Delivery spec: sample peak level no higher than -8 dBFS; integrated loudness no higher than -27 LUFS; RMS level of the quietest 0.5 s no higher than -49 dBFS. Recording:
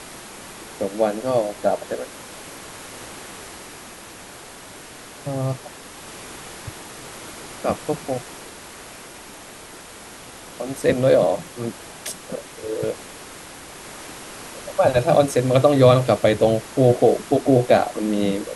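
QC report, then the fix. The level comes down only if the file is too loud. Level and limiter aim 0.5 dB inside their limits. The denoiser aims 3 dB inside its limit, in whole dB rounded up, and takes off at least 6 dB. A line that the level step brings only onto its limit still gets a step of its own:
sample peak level -3.0 dBFS: fail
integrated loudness -20.5 LUFS: fail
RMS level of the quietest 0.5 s -40 dBFS: fail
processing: noise reduction 6 dB, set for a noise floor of -40 dBFS; trim -7 dB

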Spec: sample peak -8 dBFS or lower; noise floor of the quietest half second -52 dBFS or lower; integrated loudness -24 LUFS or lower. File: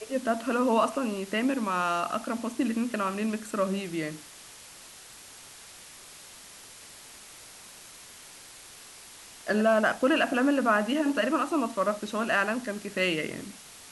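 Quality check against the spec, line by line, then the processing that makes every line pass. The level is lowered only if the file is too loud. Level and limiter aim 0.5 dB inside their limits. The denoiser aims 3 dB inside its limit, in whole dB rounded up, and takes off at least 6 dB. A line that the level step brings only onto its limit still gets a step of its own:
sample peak -12.0 dBFS: pass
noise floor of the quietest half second -48 dBFS: fail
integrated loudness -27.5 LUFS: pass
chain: noise reduction 7 dB, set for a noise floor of -48 dBFS

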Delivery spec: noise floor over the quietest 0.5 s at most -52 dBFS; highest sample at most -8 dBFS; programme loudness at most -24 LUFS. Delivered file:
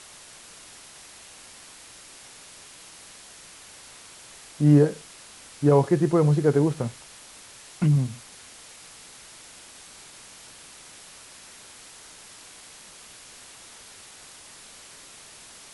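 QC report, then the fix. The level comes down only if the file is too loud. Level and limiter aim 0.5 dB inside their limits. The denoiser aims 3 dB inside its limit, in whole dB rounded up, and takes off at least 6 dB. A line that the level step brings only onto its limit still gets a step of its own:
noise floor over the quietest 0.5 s -47 dBFS: fail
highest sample -6.5 dBFS: fail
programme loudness -22.0 LUFS: fail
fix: noise reduction 6 dB, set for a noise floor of -47 dBFS; trim -2.5 dB

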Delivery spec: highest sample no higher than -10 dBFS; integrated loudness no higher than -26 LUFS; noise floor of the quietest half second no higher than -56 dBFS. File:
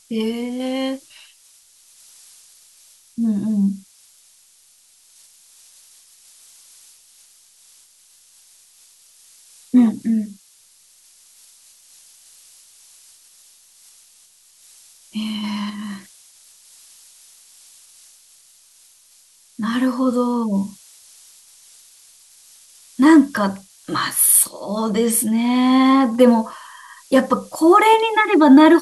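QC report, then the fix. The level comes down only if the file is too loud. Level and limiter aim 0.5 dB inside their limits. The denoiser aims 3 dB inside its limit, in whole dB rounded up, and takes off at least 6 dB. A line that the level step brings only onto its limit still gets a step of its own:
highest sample -2.0 dBFS: fail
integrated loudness -17.0 LUFS: fail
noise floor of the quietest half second -54 dBFS: fail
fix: trim -9.5 dB

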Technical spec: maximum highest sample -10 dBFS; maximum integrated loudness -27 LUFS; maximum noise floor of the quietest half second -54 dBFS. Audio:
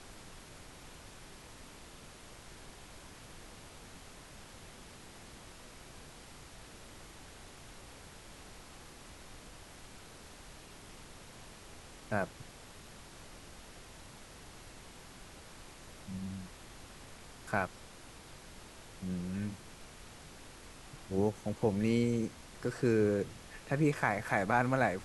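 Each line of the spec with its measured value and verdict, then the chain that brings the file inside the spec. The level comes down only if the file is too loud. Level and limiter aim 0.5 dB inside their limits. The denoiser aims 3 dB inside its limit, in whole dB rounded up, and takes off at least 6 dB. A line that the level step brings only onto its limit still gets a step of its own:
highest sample -14.0 dBFS: pass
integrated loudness -34.0 LUFS: pass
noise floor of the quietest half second -52 dBFS: fail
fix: noise reduction 6 dB, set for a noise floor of -52 dBFS

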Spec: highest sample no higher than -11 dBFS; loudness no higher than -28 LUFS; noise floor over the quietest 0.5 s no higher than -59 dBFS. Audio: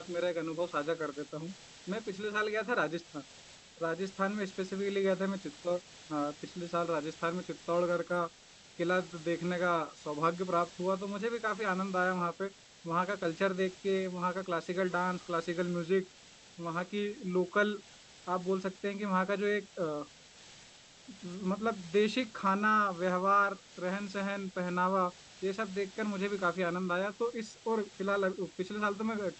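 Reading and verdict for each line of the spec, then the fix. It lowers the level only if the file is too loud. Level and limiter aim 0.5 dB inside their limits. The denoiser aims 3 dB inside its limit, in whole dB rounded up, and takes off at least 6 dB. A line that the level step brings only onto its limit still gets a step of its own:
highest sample -16.0 dBFS: pass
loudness -33.5 LUFS: pass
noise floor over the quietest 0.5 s -57 dBFS: fail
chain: noise reduction 6 dB, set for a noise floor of -57 dBFS

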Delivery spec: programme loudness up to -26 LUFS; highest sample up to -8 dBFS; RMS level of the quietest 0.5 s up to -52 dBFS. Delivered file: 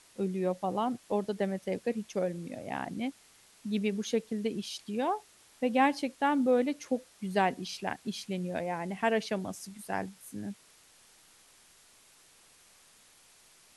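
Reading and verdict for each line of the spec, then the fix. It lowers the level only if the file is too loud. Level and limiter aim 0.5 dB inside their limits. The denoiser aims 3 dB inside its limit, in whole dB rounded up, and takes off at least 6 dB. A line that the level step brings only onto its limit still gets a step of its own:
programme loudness -32.5 LUFS: pass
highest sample -14.0 dBFS: pass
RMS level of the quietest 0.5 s -60 dBFS: pass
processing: none needed

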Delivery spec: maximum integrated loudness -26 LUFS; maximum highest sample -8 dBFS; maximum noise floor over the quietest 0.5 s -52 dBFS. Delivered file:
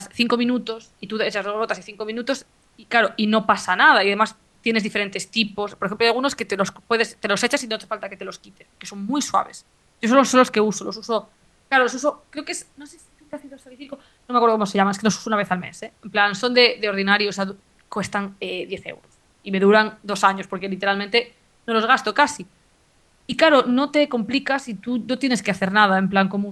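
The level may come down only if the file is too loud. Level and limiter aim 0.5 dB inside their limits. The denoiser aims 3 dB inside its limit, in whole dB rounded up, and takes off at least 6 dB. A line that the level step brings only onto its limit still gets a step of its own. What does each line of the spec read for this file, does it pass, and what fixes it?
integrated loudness -20.5 LUFS: fail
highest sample -2.0 dBFS: fail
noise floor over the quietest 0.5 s -59 dBFS: pass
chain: trim -6 dB; peak limiter -8.5 dBFS

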